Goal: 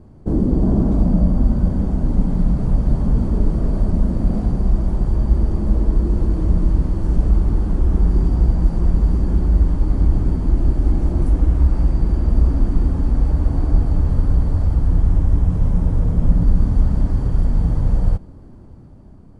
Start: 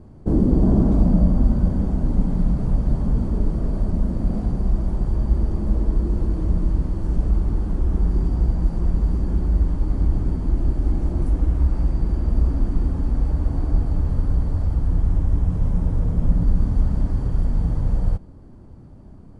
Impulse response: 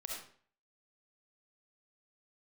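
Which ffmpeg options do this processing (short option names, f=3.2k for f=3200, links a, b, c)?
-af "dynaudnorm=f=190:g=11:m=5dB"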